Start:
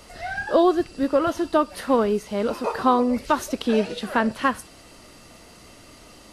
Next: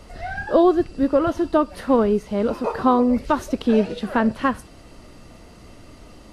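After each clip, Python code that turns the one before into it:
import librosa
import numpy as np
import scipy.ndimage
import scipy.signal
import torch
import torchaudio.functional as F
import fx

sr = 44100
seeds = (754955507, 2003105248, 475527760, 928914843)

y = fx.tilt_eq(x, sr, slope=-2.0)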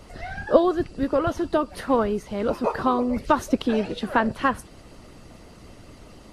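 y = fx.hpss(x, sr, part='percussive', gain_db=9)
y = y * 10.0 ** (-6.5 / 20.0)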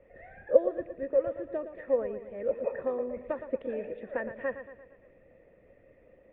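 y = fx.formant_cascade(x, sr, vowel='e')
y = fx.echo_feedback(y, sr, ms=115, feedback_pct=50, wet_db=-11)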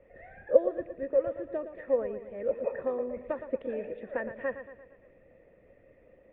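y = x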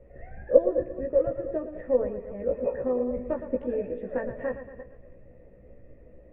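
y = fx.reverse_delay(x, sr, ms=166, wet_db=-12.5)
y = fx.tilt_eq(y, sr, slope=-3.5)
y = fx.doubler(y, sr, ms=16.0, db=-3.0)
y = y * 10.0 ** (-1.5 / 20.0)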